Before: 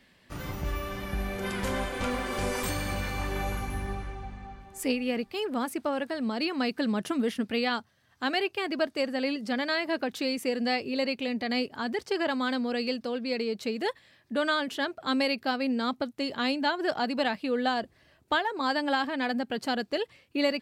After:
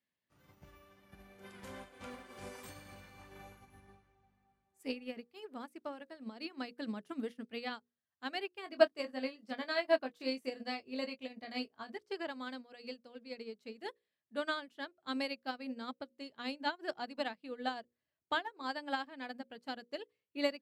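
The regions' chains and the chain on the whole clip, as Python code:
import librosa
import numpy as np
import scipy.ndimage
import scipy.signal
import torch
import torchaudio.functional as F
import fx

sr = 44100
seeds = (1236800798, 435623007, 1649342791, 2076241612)

y = fx.chain(x, sr, fx.doubler(ms=23.0, db=-6),
    fx.small_body(hz=(670.0, 1100.0), ring_ms=50, db=8), at=(8.63, 11.98))
y = scipy.signal.sosfilt(scipy.signal.butter(2, 81.0, 'highpass', fs=sr, output='sos'), y)
y = fx.hum_notches(y, sr, base_hz=60, count=9)
y = fx.upward_expand(y, sr, threshold_db=-39.0, expansion=2.5)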